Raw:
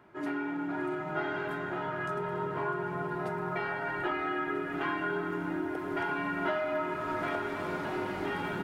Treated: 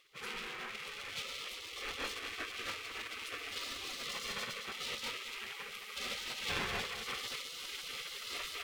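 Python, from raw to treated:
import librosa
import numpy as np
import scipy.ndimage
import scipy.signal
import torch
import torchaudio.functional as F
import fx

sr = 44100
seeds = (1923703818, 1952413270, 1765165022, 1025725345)

y = fx.lower_of_two(x, sr, delay_ms=1.2)
y = fx.spec_gate(y, sr, threshold_db=-20, keep='weak')
y = y + 10.0 ** (-12.5 / 20.0) * np.pad(y, (int(220 * sr / 1000.0), 0))[:len(y)]
y = F.gain(torch.from_numpy(y), 8.5).numpy()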